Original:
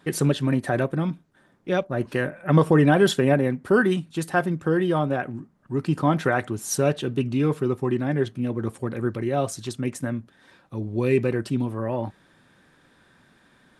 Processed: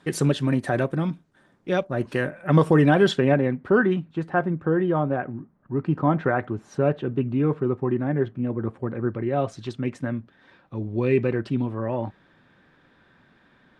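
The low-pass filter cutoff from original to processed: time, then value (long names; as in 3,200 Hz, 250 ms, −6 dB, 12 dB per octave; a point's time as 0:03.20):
0:02.76 9,500 Hz
0:03.18 4,200 Hz
0:04.20 1,700 Hz
0:09.11 1,700 Hz
0:09.60 3,500 Hz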